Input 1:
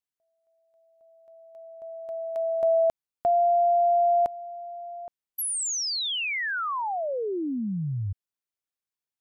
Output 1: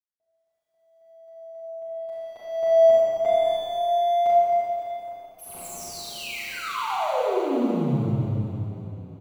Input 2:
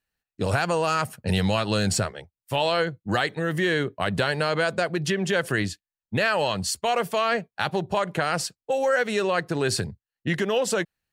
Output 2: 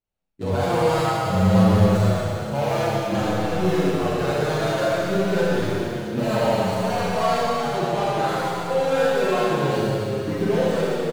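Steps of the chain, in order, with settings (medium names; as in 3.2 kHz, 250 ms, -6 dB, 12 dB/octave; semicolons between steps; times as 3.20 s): median filter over 25 samples; Schroeder reverb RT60 3.5 s, combs from 29 ms, DRR -8.5 dB; endless flanger 7.4 ms -0.57 Hz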